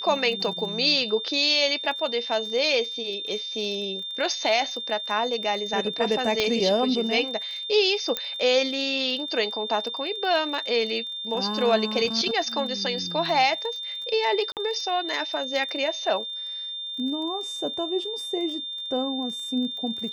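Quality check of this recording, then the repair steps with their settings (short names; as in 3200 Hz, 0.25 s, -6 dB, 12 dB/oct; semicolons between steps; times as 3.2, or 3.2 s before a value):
crackle 22/s -34 dBFS
tone 3600 Hz -31 dBFS
6.4 pop -10 dBFS
8.17 pop -10 dBFS
14.52–14.57 gap 48 ms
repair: de-click; notch 3600 Hz, Q 30; interpolate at 14.52, 48 ms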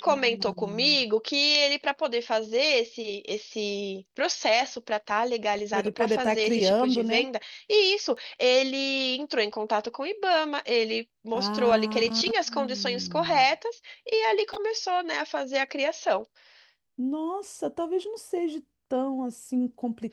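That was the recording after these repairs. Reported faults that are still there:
8.17 pop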